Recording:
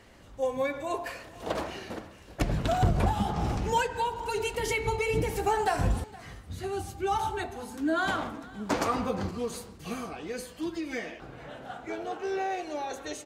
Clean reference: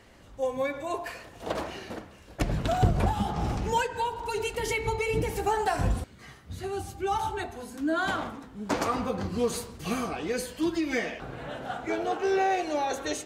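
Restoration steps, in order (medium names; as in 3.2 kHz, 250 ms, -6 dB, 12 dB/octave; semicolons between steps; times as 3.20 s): clip repair -16 dBFS; inverse comb 466 ms -21 dB; trim 0 dB, from 9.31 s +6 dB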